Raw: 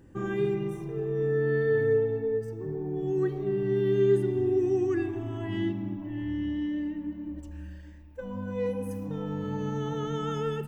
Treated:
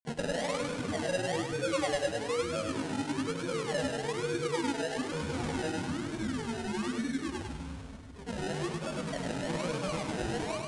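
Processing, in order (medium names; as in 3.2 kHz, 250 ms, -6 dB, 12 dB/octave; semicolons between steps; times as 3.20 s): tone controls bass -6 dB, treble +11 dB; hum notches 50/100/150/200/250/300/350/400 Hz; compression 6:1, threshold -37 dBFS, peak gain reduction 14.5 dB; granulator, pitch spread up and down by 7 st; comb of notches 410 Hz; decimation with a swept rate 31×, swing 60% 1.1 Hz; thinning echo 101 ms, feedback 43%, high-pass 420 Hz, level -3.5 dB; on a send at -13 dB: reverberation RT60 1.8 s, pre-delay 3 ms; on the sum: resampled via 22.05 kHz; trim +7.5 dB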